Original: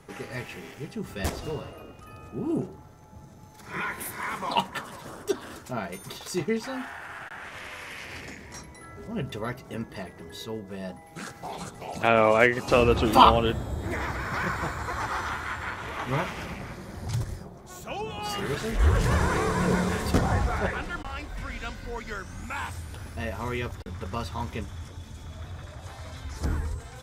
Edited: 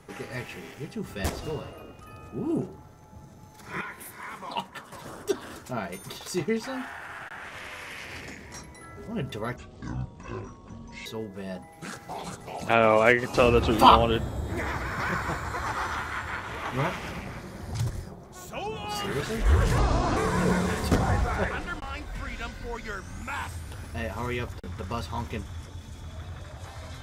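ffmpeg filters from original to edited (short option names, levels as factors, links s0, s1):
-filter_complex "[0:a]asplit=7[s0][s1][s2][s3][s4][s5][s6];[s0]atrim=end=3.812[s7];[s1]atrim=start=3.808:end=4.922,asetpts=PTS-STARTPTS,volume=0.447[s8];[s2]atrim=start=4.918:end=9.564[s9];[s3]atrim=start=9.56:end=10.4,asetpts=PTS-STARTPTS,asetrate=24696,aresample=44100[s10];[s4]atrim=start=10.396:end=19.124[s11];[s5]atrim=start=19.12:end=19.39,asetpts=PTS-STARTPTS,asetrate=30870,aresample=44100[s12];[s6]atrim=start=19.386[s13];[s7][s8]acrossfade=d=0.004:c1=hsin:c2=hsin[s14];[s14][s9]acrossfade=d=0.004:c1=hsin:c2=hsin[s15];[s15][s10]acrossfade=d=0.004:c1=hsin:c2=hsin[s16];[s16][s11]acrossfade=d=0.004:c1=hsin:c2=hsin[s17];[s17][s12]acrossfade=d=0.004:c1=hsin:c2=hsin[s18];[s18][s13]acrossfade=d=0.004:c1=hsin:c2=hsin"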